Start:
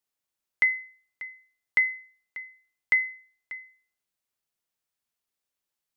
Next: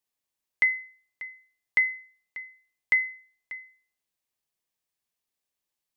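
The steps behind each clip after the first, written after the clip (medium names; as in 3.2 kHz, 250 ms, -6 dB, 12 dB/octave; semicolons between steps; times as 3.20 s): band-stop 1.4 kHz, Q 7.5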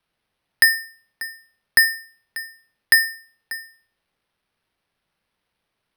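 sample-and-hold 6×; frequency shift -230 Hz; trim +8 dB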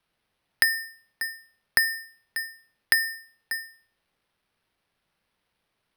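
compression 6:1, threshold -18 dBFS, peak gain reduction 8.5 dB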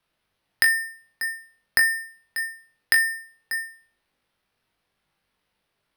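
flutter echo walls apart 3.5 m, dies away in 0.2 s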